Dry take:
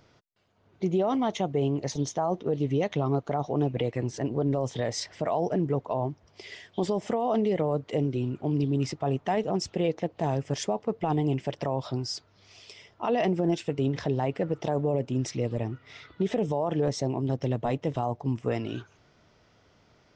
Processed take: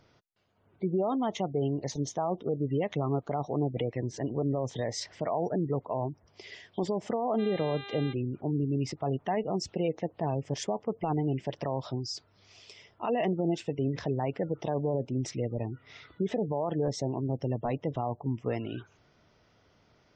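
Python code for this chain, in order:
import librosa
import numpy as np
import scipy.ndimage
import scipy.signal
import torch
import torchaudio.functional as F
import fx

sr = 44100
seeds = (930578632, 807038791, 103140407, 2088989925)

y = fx.dmg_buzz(x, sr, base_hz=400.0, harmonics=10, level_db=-41.0, tilt_db=-1, odd_only=False, at=(7.37, 8.12), fade=0.02)
y = fx.spec_gate(y, sr, threshold_db=-30, keep='strong')
y = F.gain(torch.from_numpy(y), -3.0).numpy()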